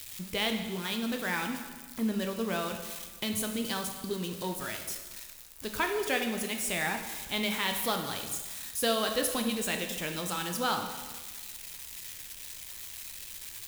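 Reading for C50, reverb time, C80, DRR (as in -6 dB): 6.5 dB, 1.4 s, 8.5 dB, 4.0 dB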